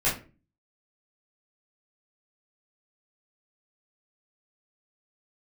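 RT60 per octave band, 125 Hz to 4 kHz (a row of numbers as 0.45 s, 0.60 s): 0.55 s, 0.50 s, 0.40 s, 0.30 s, 0.30 s, 0.25 s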